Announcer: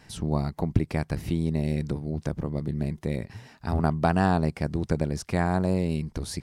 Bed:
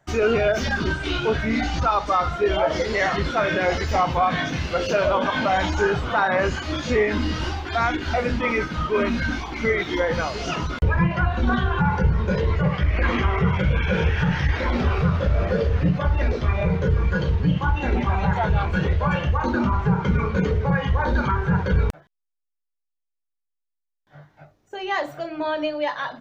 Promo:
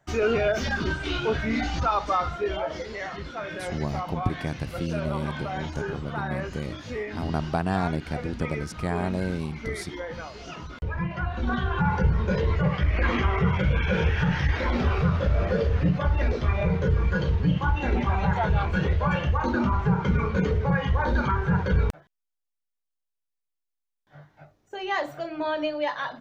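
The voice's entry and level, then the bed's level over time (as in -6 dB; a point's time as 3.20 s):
3.50 s, -3.5 dB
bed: 2.13 s -3.5 dB
2.99 s -12.5 dB
10.63 s -12.5 dB
11.94 s -2.5 dB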